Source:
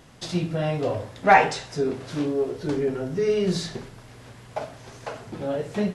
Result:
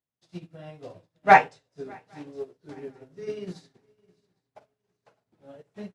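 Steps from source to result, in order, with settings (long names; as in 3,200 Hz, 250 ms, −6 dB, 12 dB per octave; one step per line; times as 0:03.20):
high-pass filter 62 Hz
feedback echo with a long and a short gap by turns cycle 810 ms, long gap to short 3 to 1, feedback 41%, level −13 dB
expander for the loud parts 2.5 to 1, over −42 dBFS
level +2 dB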